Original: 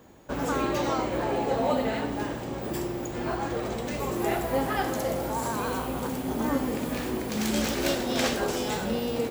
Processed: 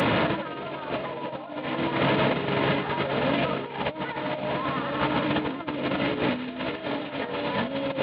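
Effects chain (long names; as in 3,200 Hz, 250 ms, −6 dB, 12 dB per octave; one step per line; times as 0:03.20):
linear delta modulator 16 kbit/s, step −27.5 dBFS
high-pass filter 86 Hz 24 dB per octave
compressor whose output falls as the input rises −33 dBFS, ratio −0.5
notch comb filter 330 Hz
speed change +16%
level +7.5 dB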